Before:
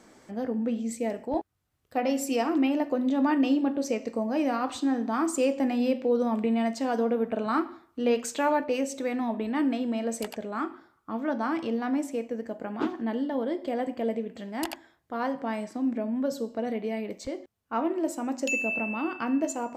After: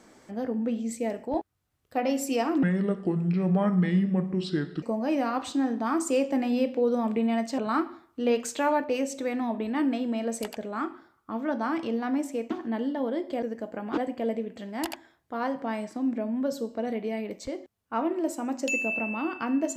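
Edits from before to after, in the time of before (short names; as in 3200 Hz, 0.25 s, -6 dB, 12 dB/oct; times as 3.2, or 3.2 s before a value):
2.63–4.1 speed 67%
6.86–7.38 cut
12.3–12.85 move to 13.77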